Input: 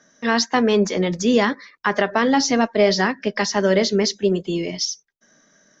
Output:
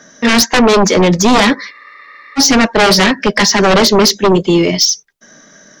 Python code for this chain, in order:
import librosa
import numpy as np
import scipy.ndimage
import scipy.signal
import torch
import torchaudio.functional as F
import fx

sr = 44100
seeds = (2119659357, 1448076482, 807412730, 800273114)

y = fx.fold_sine(x, sr, drive_db=11, ceiling_db=-5.0)
y = fx.spec_freeze(y, sr, seeds[0], at_s=1.74, hold_s=0.64)